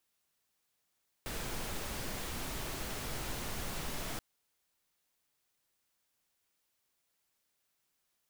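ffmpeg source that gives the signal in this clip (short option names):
-f lavfi -i "anoisesrc=c=pink:a=0.0575:d=2.93:r=44100:seed=1"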